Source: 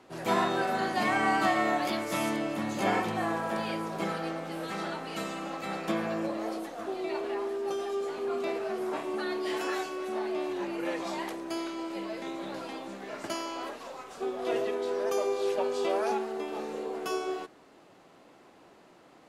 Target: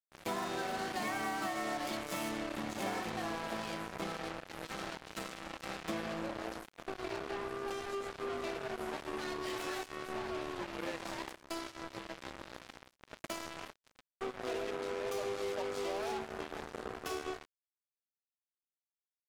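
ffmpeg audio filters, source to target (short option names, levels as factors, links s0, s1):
-af "acrusher=bits=4:mix=0:aa=0.5,acompressor=threshold=0.0316:ratio=4,volume=0.596"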